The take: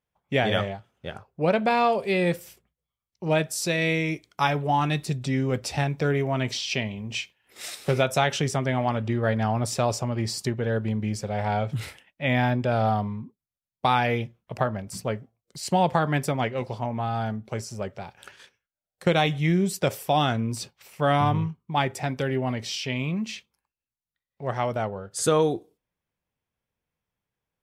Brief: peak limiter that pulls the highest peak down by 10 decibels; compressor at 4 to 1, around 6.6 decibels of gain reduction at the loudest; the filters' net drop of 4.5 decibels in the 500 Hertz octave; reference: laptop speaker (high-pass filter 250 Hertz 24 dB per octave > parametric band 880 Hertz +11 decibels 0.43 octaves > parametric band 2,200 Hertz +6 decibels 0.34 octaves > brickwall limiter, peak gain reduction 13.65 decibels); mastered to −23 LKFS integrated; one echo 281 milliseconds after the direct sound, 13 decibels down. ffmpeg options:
ffmpeg -i in.wav -af "equalizer=frequency=500:width_type=o:gain=-8,acompressor=threshold=-27dB:ratio=4,alimiter=level_in=1dB:limit=-24dB:level=0:latency=1,volume=-1dB,highpass=frequency=250:width=0.5412,highpass=frequency=250:width=1.3066,equalizer=frequency=880:width_type=o:width=0.43:gain=11,equalizer=frequency=2200:width_type=o:width=0.34:gain=6,aecho=1:1:281:0.224,volume=17dB,alimiter=limit=-13.5dB:level=0:latency=1" out.wav

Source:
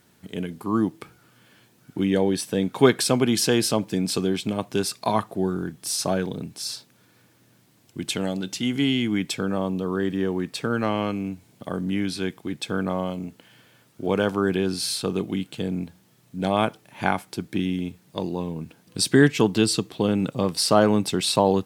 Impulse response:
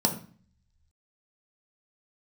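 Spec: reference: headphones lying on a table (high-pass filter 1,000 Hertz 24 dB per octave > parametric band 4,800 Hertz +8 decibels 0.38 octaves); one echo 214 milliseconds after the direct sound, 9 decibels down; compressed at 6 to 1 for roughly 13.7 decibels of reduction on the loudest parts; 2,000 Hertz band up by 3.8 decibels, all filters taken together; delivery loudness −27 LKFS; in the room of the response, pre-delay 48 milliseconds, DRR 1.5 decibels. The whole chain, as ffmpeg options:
-filter_complex "[0:a]equalizer=frequency=2000:width_type=o:gain=5,acompressor=threshold=-25dB:ratio=6,aecho=1:1:214:0.355,asplit=2[link_01][link_02];[1:a]atrim=start_sample=2205,adelay=48[link_03];[link_02][link_03]afir=irnorm=-1:irlink=0,volume=-11.5dB[link_04];[link_01][link_04]amix=inputs=2:normalize=0,highpass=frequency=1000:width=0.5412,highpass=frequency=1000:width=1.3066,equalizer=frequency=4800:width_type=o:width=0.38:gain=8,volume=0.5dB"

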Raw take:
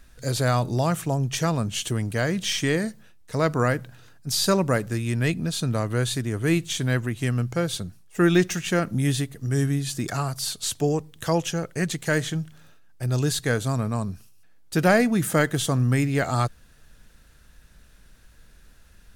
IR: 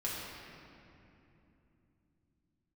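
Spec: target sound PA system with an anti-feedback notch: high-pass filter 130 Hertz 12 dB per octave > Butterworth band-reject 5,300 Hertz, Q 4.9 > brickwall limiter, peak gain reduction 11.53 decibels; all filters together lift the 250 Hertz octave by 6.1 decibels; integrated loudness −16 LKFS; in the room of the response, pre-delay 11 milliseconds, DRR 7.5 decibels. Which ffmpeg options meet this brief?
-filter_complex "[0:a]equalizer=frequency=250:width_type=o:gain=9,asplit=2[link_01][link_02];[1:a]atrim=start_sample=2205,adelay=11[link_03];[link_02][link_03]afir=irnorm=-1:irlink=0,volume=-11.5dB[link_04];[link_01][link_04]amix=inputs=2:normalize=0,highpass=130,asuperstop=centerf=5300:order=8:qfactor=4.9,volume=8dB,alimiter=limit=-5dB:level=0:latency=1"

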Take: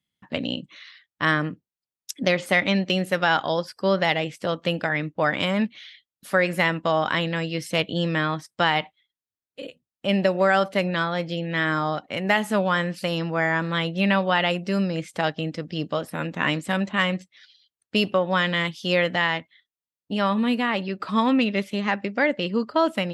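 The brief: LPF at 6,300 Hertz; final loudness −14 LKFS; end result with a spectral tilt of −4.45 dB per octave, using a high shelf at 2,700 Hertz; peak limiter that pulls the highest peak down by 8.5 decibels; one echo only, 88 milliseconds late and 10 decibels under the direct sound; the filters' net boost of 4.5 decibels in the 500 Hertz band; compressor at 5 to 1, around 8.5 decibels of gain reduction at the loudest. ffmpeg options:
ffmpeg -i in.wav -af "lowpass=6300,equalizer=frequency=500:width_type=o:gain=5.5,highshelf=frequency=2700:gain=-3.5,acompressor=threshold=-22dB:ratio=5,alimiter=limit=-17dB:level=0:latency=1,aecho=1:1:88:0.316,volume=14.5dB" out.wav

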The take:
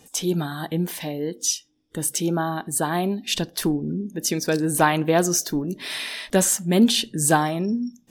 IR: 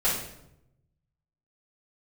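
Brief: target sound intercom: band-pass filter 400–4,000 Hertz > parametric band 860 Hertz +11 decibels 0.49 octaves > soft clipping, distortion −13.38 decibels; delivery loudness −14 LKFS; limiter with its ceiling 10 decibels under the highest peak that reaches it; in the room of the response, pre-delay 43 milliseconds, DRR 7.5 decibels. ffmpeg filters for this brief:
-filter_complex "[0:a]alimiter=limit=-15dB:level=0:latency=1,asplit=2[link_01][link_02];[1:a]atrim=start_sample=2205,adelay=43[link_03];[link_02][link_03]afir=irnorm=-1:irlink=0,volume=-19.5dB[link_04];[link_01][link_04]amix=inputs=2:normalize=0,highpass=400,lowpass=4000,equalizer=frequency=860:width_type=o:width=0.49:gain=11,asoftclip=threshold=-17.5dB,volume=14.5dB"

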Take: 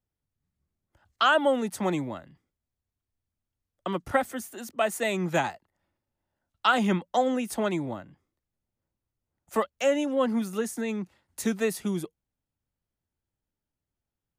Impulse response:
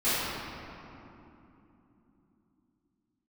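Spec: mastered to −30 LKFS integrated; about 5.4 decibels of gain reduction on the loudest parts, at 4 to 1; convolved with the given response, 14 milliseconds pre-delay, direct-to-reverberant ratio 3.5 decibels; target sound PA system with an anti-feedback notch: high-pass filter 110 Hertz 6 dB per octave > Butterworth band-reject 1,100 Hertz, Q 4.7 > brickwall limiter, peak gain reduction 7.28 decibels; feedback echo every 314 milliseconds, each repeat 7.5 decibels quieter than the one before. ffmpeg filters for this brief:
-filter_complex "[0:a]acompressor=threshold=-24dB:ratio=4,aecho=1:1:314|628|942|1256|1570:0.422|0.177|0.0744|0.0312|0.0131,asplit=2[link_01][link_02];[1:a]atrim=start_sample=2205,adelay=14[link_03];[link_02][link_03]afir=irnorm=-1:irlink=0,volume=-17.5dB[link_04];[link_01][link_04]amix=inputs=2:normalize=0,highpass=frequency=110:poles=1,asuperstop=centerf=1100:order=8:qfactor=4.7,volume=2dB,alimiter=limit=-19dB:level=0:latency=1"

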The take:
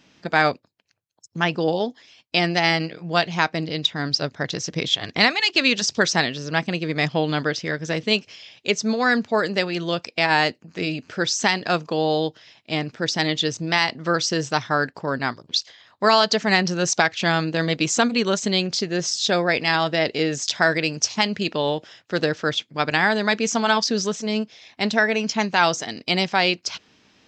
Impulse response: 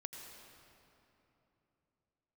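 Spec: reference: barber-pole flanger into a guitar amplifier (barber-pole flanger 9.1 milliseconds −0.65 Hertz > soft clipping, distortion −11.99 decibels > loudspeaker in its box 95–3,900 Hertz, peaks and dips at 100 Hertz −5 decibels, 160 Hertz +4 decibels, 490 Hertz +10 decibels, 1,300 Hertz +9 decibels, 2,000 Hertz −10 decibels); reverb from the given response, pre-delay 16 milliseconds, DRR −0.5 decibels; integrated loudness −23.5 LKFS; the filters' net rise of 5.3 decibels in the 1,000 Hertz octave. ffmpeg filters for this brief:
-filter_complex "[0:a]equalizer=frequency=1000:width_type=o:gain=3,asplit=2[link_01][link_02];[1:a]atrim=start_sample=2205,adelay=16[link_03];[link_02][link_03]afir=irnorm=-1:irlink=0,volume=3.5dB[link_04];[link_01][link_04]amix=inputs=2:normalize=0,asplit=2[link_05][link_06];[link_06]adelay=9.1,afreqshift=-0.65[link_07];[link_05][link_07]amix=inputs=2:normalize=1,asoftclip=threshold=-15.5dB,highpass=95,equalizer=frequency=100:width_type=q:width=4:gain=-5,equalizer=frequency=160:width_type=q:width=4:gain=4,equalizer=frequency=490:width_type=q:width=4:gain=10,equalizer=frequency=1300:width_type=q:width=4:gain=9,equalizer=frequency=2000:width_type=q:width=4:gain=-10,lowpass=frequency=3900:width=0.5412,lowpass=frequency=3900:width=1.3066,volume=-2dB"

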